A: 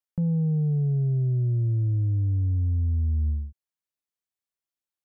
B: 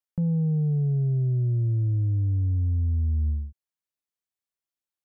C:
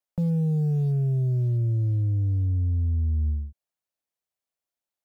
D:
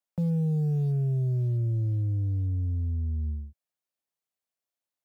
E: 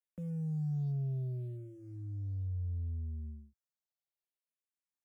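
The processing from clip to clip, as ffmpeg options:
ffmpeg -i in.wav -af anull out.wav
ffmpeg -i in.wav -filter_complex "[0:a]equalizer=frequency=650:width_type=o:width=0.78:gain=8,acrossover=split=410[link_01][link_02];[link_02]acrusher=bits=4:mode=log:mix=0:aa=0.000001[link_03];[link_01][link_03]amix=inputs=2:normalize=0" out.wav
ffmpeg -i in.wav -af "highpass=82,volume=-2dB" out.wav
ffmpeg -i in.wav -filter_complex "[0:a]asplit=2[link_01][link_02];[link_02]afreqshift=-0.67[link_03];[link_01][link_03]amix=inputs=2:normalize=1,volume=-8dB" out.wav

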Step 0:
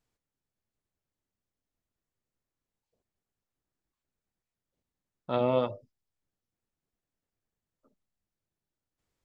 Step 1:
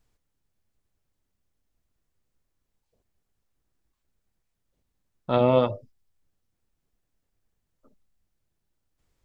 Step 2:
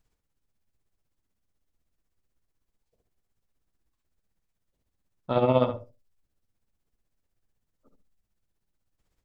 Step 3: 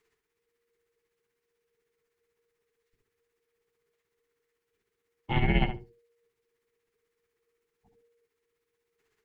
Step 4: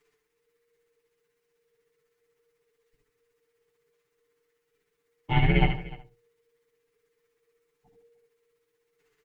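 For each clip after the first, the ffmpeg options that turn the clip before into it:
ffmpeg -i in.wav -af "lowshelf=frequency=69:gain=12,volume=6dB" out.wav
ffmpeg -i in.wav -filter_complex "[0:a]tremolo=f=16:d=0.59,asplit=2[link_01][link_02];[link_02]adelay=71,lowpass=frequency=2200:poles=1,volume=-7dB,asplit=2[link_03][link_04];[link_04]adelay=71,lowpass=frequency=2200:poles=1,volume=0.16,asplit=2[link_05][link_06];[link_06]adelay=71,lowpass=frequency=2200:poles=1,volume=0.16[link_07];[link_01][link_03][link_05][link_07]amix=inputs=4:normalize=0" out.wav
ffmpeg -i in.wav -af "afreqshift=-470,equalizer=frequency=250:width_type=o:width=1:gain=-6,equalizer=frequency=500:width_type=o:width=1:gain=-6,equalizer=frequency=1000:width_type=o:width=1:gain=4,equalizer=frequency=2000:width_type=o:width=1:gain=11" out.wav
ffmpeg -i in.wav -af "aecho=1:1:6.8:0.93,aecho=1:1:79|301:0.398|0.112" out.wav

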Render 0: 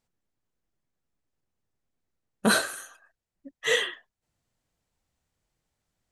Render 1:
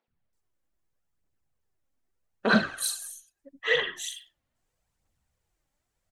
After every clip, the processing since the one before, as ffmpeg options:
ffmpeg -i in.wav -filter_complex "[0:a]aphaser=in_gain=1:out_gain=1:delay=3.8:decay=0.45:speed=0.79:type=triangular,acrossover=split=280|4100[link_01][link_02][link_03];[link_01]adelay=80[link_04];[link_03]adelay=330[link_05];[link_04][link_02][link_05]amix=inputs=3:normalize=0" out.wav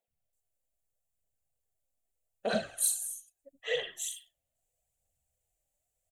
ffmpeg -i in.wav -af "firequalizer=gain_entry='entry(110,0);entry(180,-5);entry(340,-8);entry(490,3);entry(690,7);entry(1000,-12);entry(1800,-6);entry(2700,1);entry(5100,-3);entry(7200,10)':delay=0.05:min_phase=1,volume=-7dB" out.wav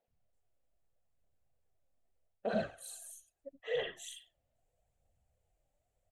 ffmpeg -i in.wav -af "areverse,acompressor=threshold=-38dB:ratio=5,areverse,lowpass=frequency=1100:poles=1,volume=8dB" out.wav

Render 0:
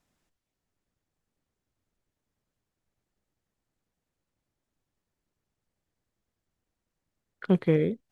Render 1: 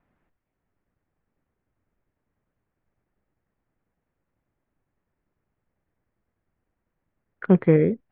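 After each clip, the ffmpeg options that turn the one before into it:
ffmpeg -i in.wav -af "lowpass=frequency=2200:width=0.5412,lowpass=frequency=2200:width=1.3066,volume=6dB" out.wav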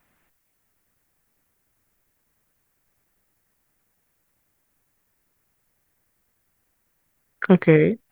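ffmpeg -i in.wav -af "crystalizer=i=9.5:c=0,volume=1dB" out.wav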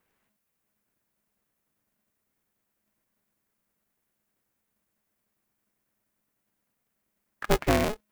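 ffmpeg -i in.wav -af "aeval=exprs='val(0)*sgn(sin(2*PI*210*n/s))':channel_layout=same,volume=-8.5dB" out.wav

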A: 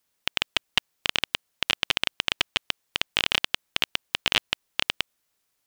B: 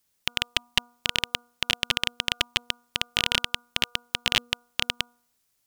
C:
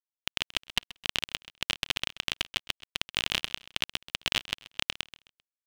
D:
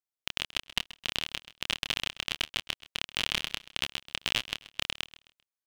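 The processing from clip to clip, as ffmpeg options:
ffmpeg -i in.wav -af "bass=frequency=250:gain=6,treble=frequency=4000:gain=5,bandreject=frequency=240.8:width_type=h:width=4,bandreject=frequency=481.6:width_type=h:width=4,bandreject=frequency=722.4:width_type=h:width=4,bandreject=frequency=963.2:width_type=h:width=4,bandreject=frequency=1204:width_type=h:width=4,bandreject=frequency=1444.8:width_type=h:width=4,volume=-1.5dB" out.wav
ffmpeg -i in.wav -af "acrusher=bits=5:mix=0:aa=0.5,aecho=1:1:131|262|393:0.141|0.0452|0.0145,volume=-5dB" out.wav
ffmpeg -i in.wav -filter_complex "[0:a]asplit=2[link_01][link_02];[link_02]adelay=27,volume=-6dB[link_03];[link_01][link_03]amix=inputs=2:normalize=0,volume=-2dB" out.wav

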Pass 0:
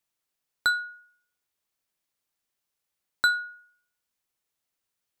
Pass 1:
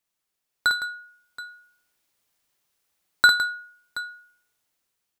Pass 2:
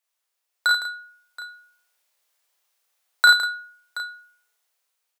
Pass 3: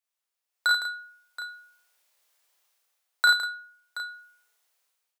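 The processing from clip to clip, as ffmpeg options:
ffmpeg -i in.wav -filter_complex "[0:a]dynaudnorm=framelen=380:gausssize=5:maxgain=8dB,asplit=2[link_01][link_02];[link_02]aecho=0:1:52|160|726:0.631|0.282|0.15[link_03];[link_01][link_03]amix=inputs=2:normalize=0" out.wav
ffmpeg -i in.wav -filter_complex "[0:a]highpass=frequency=470:width=0.5412,highpass=frequency=470:width=1.3066,asplit=2[link_01][link_02];[link_02]adelay=34,volume=-2.5dB[link_03];[link_01][link_03]amix=inputs=2:normalize=0" out.wav
ffmpeg -i in.wav -af "dynaudnorm=framelen=440:gausssize=3:maxgain=9.5dB,volume=-7.5dB" out.wav

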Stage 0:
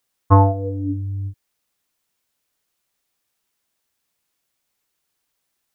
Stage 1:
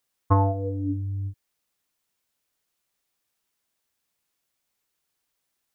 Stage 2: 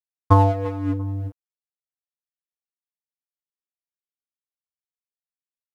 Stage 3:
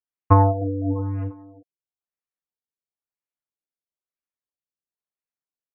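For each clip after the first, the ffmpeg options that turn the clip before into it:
ffmpeg -i in.wav -af "acompressor=threshold=-13dB:ratio=4,volume=-3.5dB" out.wav
ffmpeg -i in.wav -filter_complex "[0:a]asplit=2[link_01][link_02];[link_02]adelay=343,lowpass=frequency=1600:poles=1,volume=-18dB,asplit=2[link_03][link_04];[link_04]adelay=343,lowpass=frequency=1600:poles=1,volume=0.37,asplit=2[link_05][link_06];[link_06]adelay=343,lowpass=frequency=1600:poles=1,volume=0.37[link_07];[link_01][link_03][link_05][link_07]amix=inputs=4:normalize=0,aeval=exprs='sgn(val(0))*max(abs(val(0))-0.0141,0)':channel_layout=same,volume=6.5dB" out.wav
ffmpeg -i in.wav -filter_complex "[0:a]asplit=2[link_01][link_02];[link_02]adelay=310,highpass=300,lowpass=3400,asoftclip=type=hard:threshold=-11.5dB,volume=-6dB[link_03];[link_01][link_03]amix=inputs=2:normalize=0,afftfilt=real='re*lt(b*sr/1024,590*pow(3000/590,0.5+0.5*sin(2*PI*1*pts/sr)))':imag='im*lt(b*sr/1024,590*pow(3000/590,0.5+0.5*sin(2*PI*1*pts/sr)))':win_size=1024:overlap=0.75" out.wav

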